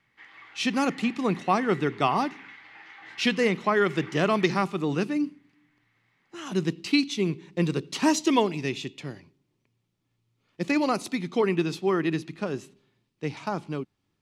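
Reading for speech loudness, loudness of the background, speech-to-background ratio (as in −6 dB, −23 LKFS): −26.5 LKFS, −46.0 LKFS, 19.5 dB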